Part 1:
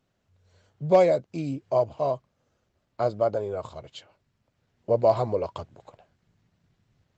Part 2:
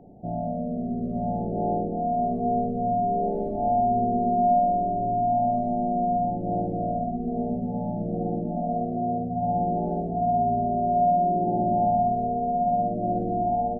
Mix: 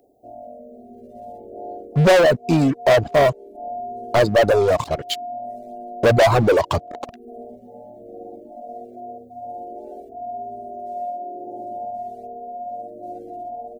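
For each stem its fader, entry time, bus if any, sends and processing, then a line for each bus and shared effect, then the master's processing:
0.0 dB, 1.15 s, no send, waveshaping leveller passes 5
+1.5 dB, 0.00 s, no send, tilt EQ +4.5 dB/octave; static phaser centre 420 Hz, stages 4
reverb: none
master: reverb removal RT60 0.58 s

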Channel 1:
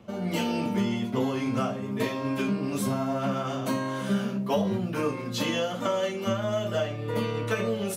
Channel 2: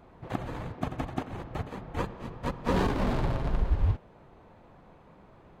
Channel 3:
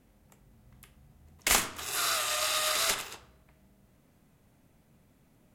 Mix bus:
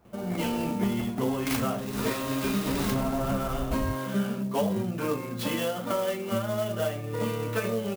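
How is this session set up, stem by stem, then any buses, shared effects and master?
-1.0 dB, 0.05 s, no send, treble shelf 8.8 kHz -10.5 dB
-7.5 dB, 0.00 s, no send, none
-7.5 dB, 0.00 s, no send, none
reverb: none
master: sampling jitter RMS 0.035 ms

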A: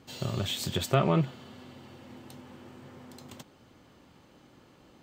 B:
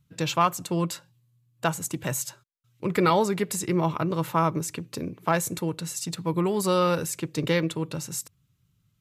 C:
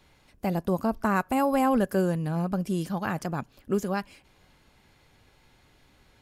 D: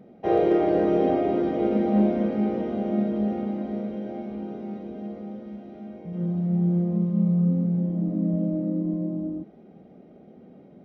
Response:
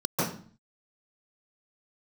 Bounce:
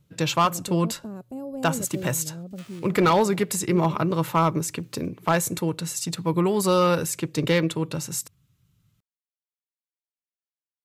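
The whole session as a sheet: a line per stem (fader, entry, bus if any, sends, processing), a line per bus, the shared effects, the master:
-17.5 dB, 1.65 s, no send, formants flattened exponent 0.3; high-pass 1.2 kHz; random-step tremolo, depth 95%
+3.0 dB, 0.00 s, no send, hard clipper -16 dBFS, distortion -19 dB
-19.0 dB, 0.00 s, no send, graphic EQ 125/250/500/1000/2000 Hz +11/+7/+11/-7/-12 dB
mute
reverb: none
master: none

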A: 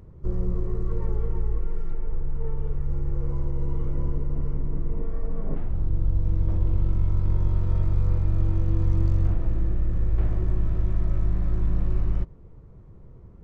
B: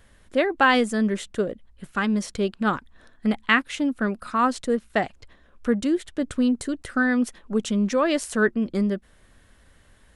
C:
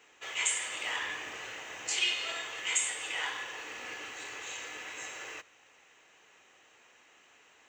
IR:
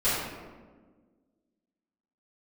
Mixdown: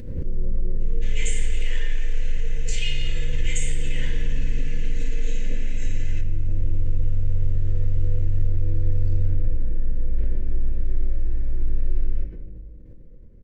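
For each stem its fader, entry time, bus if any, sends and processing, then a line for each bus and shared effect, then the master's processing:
-7.5 dB, 0.00 s, send -14 dB, none
mute
-4.5 dB, 0.80 s, send -19 dB, none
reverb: on, RT60 1.5 s, pre-delay 3 ms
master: high-order bell 980 Hz -15.5 dB 1.1 oct; comb 3.9 ms, depth 39%; swell ahead of each attack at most 55 dB/s

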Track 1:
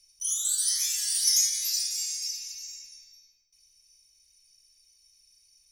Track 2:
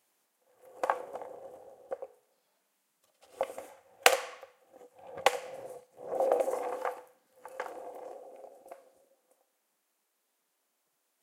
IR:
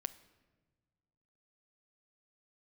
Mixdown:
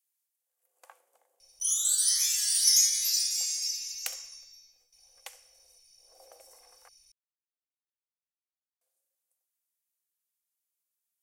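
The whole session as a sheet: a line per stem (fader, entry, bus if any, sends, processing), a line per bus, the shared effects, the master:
+1.0 dB, 1.40 s, no send, peaking EQ 710 Hz +7.5 dB 0.76 oct
-8.0 dB, 0.00 s, muted 6.89–8.81 s, no send, differentiator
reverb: none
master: none

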